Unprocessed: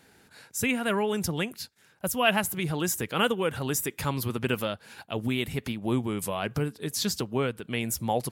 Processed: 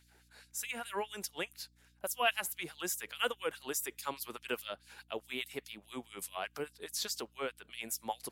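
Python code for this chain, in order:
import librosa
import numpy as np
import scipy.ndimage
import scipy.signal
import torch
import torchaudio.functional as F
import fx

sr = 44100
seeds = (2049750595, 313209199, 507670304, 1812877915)

y = fx.filter_lfo_highpass(x, sr, shape='sine', hz=4.8, low_hz=360.0, high_hz=5000.0, q=1.0)
y = fx.add_hum(y, sr, base_hz=60, snr_db=28)
y = y * librosa.db_to_amplitude(-7.0)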